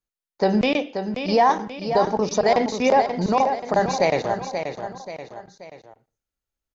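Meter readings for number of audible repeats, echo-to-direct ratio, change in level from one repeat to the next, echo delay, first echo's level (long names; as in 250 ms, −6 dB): 3, −7.0 dB, −6.5 dB, 532 ms, −8.0 dB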